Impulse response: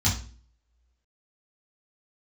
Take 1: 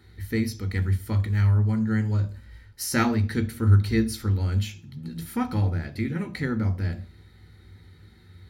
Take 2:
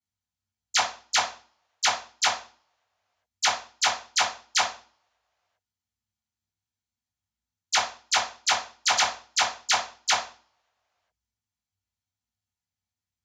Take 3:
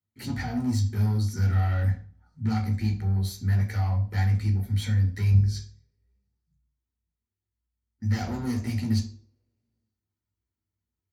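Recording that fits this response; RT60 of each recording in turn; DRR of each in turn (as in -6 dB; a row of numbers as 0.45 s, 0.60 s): 2; 0.45 s, 0.40 s, 0.40 s; 8.0 dB, -7.0 dB, 1.0 dB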